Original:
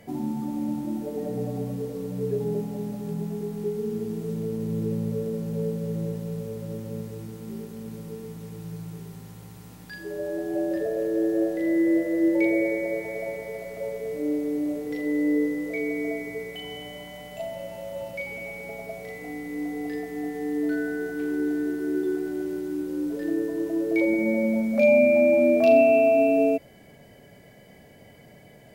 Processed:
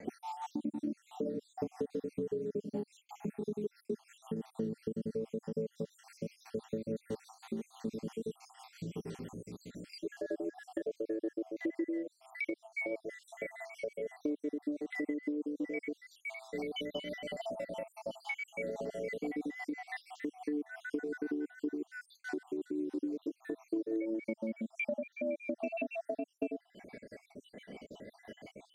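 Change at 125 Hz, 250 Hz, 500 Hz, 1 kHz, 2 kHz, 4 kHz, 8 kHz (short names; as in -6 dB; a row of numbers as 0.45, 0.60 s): -15.0 dB, -12.5 dB, -14.5 dB, -13.5 dB, -10.0 dB, -5.0 dB, n/a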